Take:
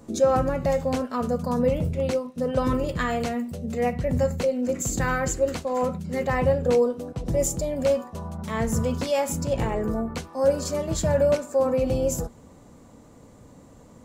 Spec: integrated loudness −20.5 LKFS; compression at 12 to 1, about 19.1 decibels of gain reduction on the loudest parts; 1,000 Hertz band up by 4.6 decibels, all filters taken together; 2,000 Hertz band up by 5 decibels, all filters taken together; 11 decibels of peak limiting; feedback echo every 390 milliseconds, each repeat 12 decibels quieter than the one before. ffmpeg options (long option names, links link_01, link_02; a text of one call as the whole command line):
ffmpeg -i in.wav -af "equalizer=frequency=1000:width_type=o:gain=5,equalizer=frequency=2000:width_type=o:gain=4.5,acompressor=threshold=-33dB:ratio=12,alimiter=level_in=9.5dB:limit=-24dB:level=0:latency=1,volume=-9.5dB,aecho=1:1:390|780|1170:0.251|0.0628|0.0157,volume=21dB" out.wav